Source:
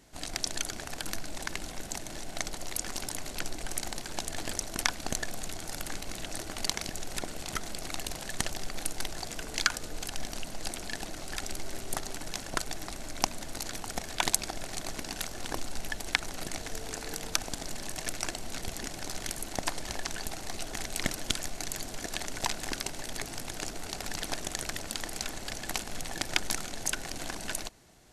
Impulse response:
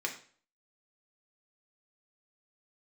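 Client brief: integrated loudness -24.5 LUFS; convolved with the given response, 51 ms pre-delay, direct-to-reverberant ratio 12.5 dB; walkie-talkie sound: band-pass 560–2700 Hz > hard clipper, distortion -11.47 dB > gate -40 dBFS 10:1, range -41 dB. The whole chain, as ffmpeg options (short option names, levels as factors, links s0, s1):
-filter_complex "[0:a]asplit=2[s0][s1];[1:a]atrim=start_sample=2205,adelay=51[s2];[s1][s2]afir=irnorm=-1:irlink=0,volume=0.15[s3];[s0][s3]amix=inputs=2:normalize=0,highpass=560,lowpass=2700,asoftclip=type=hard:threshold=0.0794,agate=range=0.00891:threshold=0.01:ratio=10,volume=8.41"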